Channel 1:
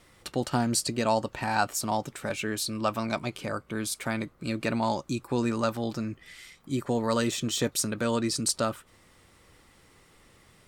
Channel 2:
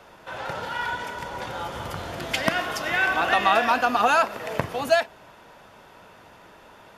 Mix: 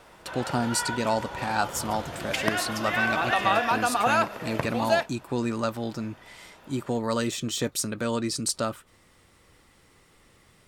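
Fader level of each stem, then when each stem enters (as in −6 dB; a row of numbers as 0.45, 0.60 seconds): −0.5, −3.5 decibels; 0.00, 0.00 seconds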